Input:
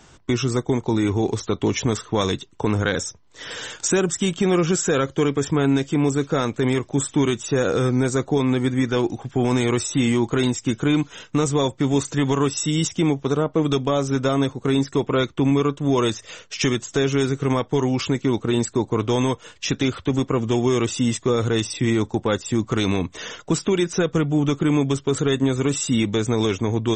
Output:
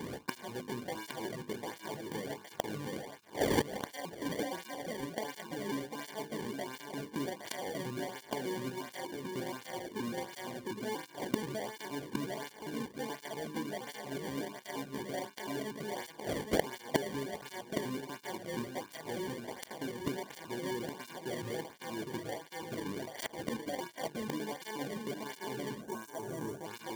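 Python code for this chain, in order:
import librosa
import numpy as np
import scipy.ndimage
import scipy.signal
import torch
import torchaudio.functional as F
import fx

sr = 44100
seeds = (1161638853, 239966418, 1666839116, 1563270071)

p1 = fx.pitch_trill(x, sr, semitones=6.5, every_ms=119)
p2 = scipy.signal.sosfilt(scipy.signal.butter(2, 65.0, 'highpass', fs=sr, output='sos'), p1)
p3 = fx.tilt_shelf(p2, sr, db=3.5, hz=710.0)
p4 = fx.hum_notches(p3, sr, base_hz=50, count=9)
p5 = fx.rider(p4, sr, range_db=4, speed_s=2.0)
p6 = p4 + F.gain(torch.from_numpy(p5), 1.0).numpy()
p7 = 10.0 ** (-8.5 / 20.0) * np.tanh(p6 / 10.0 ** (-8.5 / 20.0))
p8 = fx.gate_flip(p7, sr, shuts_db=-18.0, range_db=-26)
p9 = p8 + fx.echo_filtered(p8, sr, ms=814, feedback_pct=26, hz=1200.0, wet_db=-5, dry=0)
p10 = fx.sample_hold(p9, sr, seeds[0], rate_hz=1300.0, jitter_pct=0)
p11 = fx.spec_box(p10, sr, start_s=25.81, length_s=0.84, low_hz=1700.0, high_hz=5500.0, gain_db=-9)
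p12 = fx.flanger_cancel(p11, sr, hz=1.4, depth_ms=1.6)
y = F.gain(torch.from_numpy(p12), 4.5).numpy()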